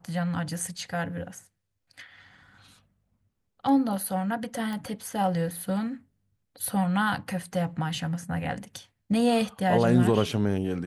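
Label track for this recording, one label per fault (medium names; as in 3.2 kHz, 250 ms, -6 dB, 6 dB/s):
4.730000	4.730000	pop -22 dBFS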